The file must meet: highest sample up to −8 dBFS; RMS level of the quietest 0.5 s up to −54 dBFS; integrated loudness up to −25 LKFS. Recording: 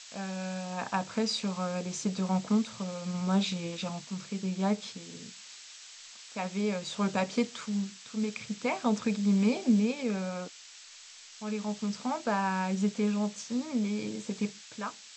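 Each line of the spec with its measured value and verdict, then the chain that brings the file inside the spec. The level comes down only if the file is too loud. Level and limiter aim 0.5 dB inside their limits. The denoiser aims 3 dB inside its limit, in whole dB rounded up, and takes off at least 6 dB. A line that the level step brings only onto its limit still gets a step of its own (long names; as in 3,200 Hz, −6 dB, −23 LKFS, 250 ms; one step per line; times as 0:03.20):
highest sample −14.5 dBFS: in spec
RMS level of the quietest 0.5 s −51 dBFS: out of spec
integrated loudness −32.0 LKFS: in spec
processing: broadband denoise 6 dB, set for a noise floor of −51 dBFS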